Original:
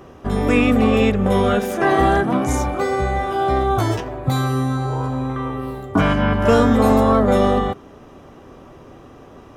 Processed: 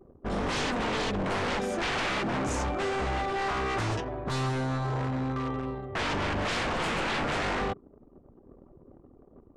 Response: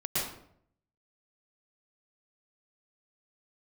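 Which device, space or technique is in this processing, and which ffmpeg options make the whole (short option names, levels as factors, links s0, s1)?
synthesiser wavefolder: -filter_complex "[0:a]asettb=1/sr,asplit=3[s0][s1][s2];[s0]atrim=end=0.674[s3];[s1]atrim=start=0.67:end=1.15,asetpts=PTS-STARTPTS,afade=t=in:d=0.004:c=qsin,afade=t=out:st=0.476:d=0.004:c=qsin,lowshelf=f=150:g=-9[s4];[s2]atrim=start=1.146[s5];[s3][s4]acrossfade=d=0.004:c1=hsin:c2=qsin[s6];[s6][s5]acrossfade=d=0.004:c1=qsin:c2=hsin,anlmdn=2.51,aeval=exprs='0.119*(abs(mod(val(0)/0.119+3,4)-2)-1)':c=same,lowpass=f=8700:w=0.5412,lowpass=f=8700:w=1.3066,volume=0.501"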